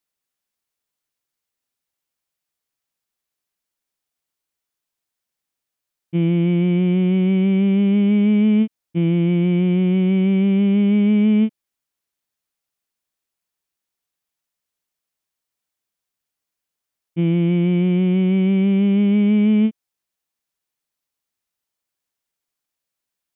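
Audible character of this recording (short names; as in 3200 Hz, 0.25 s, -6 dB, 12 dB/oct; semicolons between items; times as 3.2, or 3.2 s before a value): noise floor -84 dBFS; spectral tilt -6.0 dB/oct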